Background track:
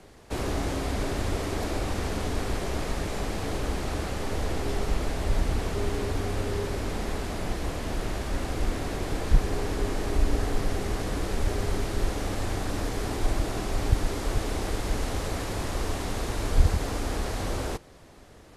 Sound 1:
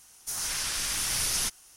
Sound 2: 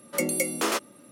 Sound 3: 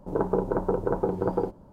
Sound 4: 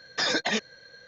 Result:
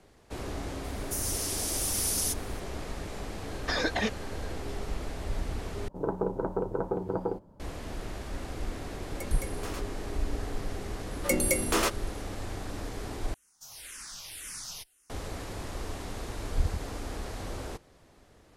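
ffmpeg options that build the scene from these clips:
ffmpeg -i bed.wav -i cue0.wav -i cue1.wav -i cue2.wav -i cue3.wav -filter_complex "[1:a]asplit=2[link_01][link_02];[2:a]asplit=2[link_03][link_04];[0:a]volume=-7.5dB[link_05];[link_01]aderivative[link_06];[4:a]highshelf=frequency=2700:gain=-9.5[link_07];[link_02]asplit=2[link_08][link_09];[link_09]afreqshift=-1.9[link_10];[link_08][link_10]amix=inputs=2:normalize=1[link_11];[link_05]asplit=3[link_12][link_13][link_14];[link_12]atrim=end=5.884[link_15];[3:a]atrim=end=1.72,asetpts=PTS-STARTPTS,volume=-5dB[link_16];[link_13]atrim=start=7.596:end=13.344[link_17];[link_11]atrim=end=1.76,asetpts=PTS-STARTPTS,volume=-10dB[link_18];[link_14]atrim=start=15.096[link_19];[link_06]atrim=end=1.76,asetpts=PTS-STARTPTS,volume=-1.5dB,afade=type=in:duration=0.004:curve=hsin,afade=type=out:start_time=1.756:duration=0.004:curve=hsin,adelay=840[link_20];[link_07]atrim=end=1.07,asetpts=PTS-STARTPTS,volume=-0.5dB,afade=type=in:duration=0.004:curve=hsin,afade=type=out:start_time=1.066:duration=0.004:curve=hsin,adelay=3500[link_21];[link_03]atrim=end=1.11,asetpts=PTS-STARTPTS,volume=-15.5dB,afade=type=in:duration=0.004:curve=hsin,afade=type=out:start_time=1.106:duration=0.004:curve=hsin,adelay=9020[link_22];[link_04]atrim=end=1.11,asetpts=PTS-STARTPTS,volume=-0.5dB,afade=type=in:duration=0.004:curve=hsin,afade=type=out:start_time=1.106:duration=0.004:curve=hsin,adelay=11110[link_23];[link_15][link_16]acrossfade=duration=0.004:curve1=hsin:curve2=hsin[link_24];[link_24][link_17]acrossfade=duration=0.004:curve1=hsin:curve2=hsin[link_25];[link_25][link_18]acrossfade=duration=0.004:curve1=hsin:curve2=hsin[link_26];[link_26][link_19]acrossfade=duration=0.004:curve1=hsin:curve2=hsin[link_27];[link_27][link_20][link_21][link_22][link_23]amix=inputs=5:normalize=0" out.wav

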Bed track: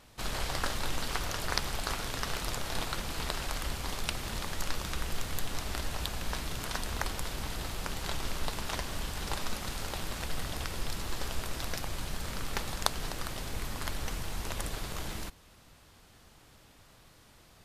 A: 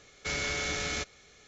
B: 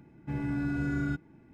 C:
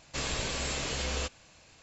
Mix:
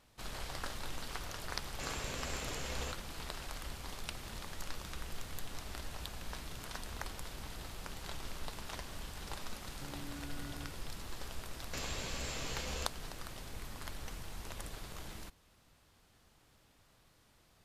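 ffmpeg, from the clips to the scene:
ffmpeg -i bed.wav -i cue0.wav -i cue1.wav -i cue2.wav -filter_complex "[3:a]asplit=2[link_01][link_02];[0:a]volume=-9dB[link_03];[link_01]equalizer=frequency=4200:width=1.5:gain=-5[link_04];[2:a]acompressor=threshold=-35dB:ratio=6:attack=3.2:release=140:knee=1:detection=peak[link_05];[link_04]atrim=end=1.82,asetpts=PTS-STARTPTS,volume=-8dB,afade=type=in:duration=0.004:curve=hsin,afade=type=out:start_time=1.816:duration=0.004:curve=hsin,adelay=1650[link_06];[link_05]atrim=end=1.53,asetpts=PTS-STARTPTS,volume=-10dB,afade=type=in:duration=0.004:curve=hsin,afade=type=out:start_time=1.526:duration=0.004:curve=hsin,adelay=420714S[link_07];[link_02]atrim=end=1.82,asetpts=PTS-STARTPTS,volume=-8.5dB,afade=type=in:duration=0.004:curve=hsin,afade=type=out:start_time=1.816:duration=0.004:curve=hsin,adelay=11590[link_08];[link_03][link_06][link_07][link_08]amix=inputs=4:normalize=0" out.wav

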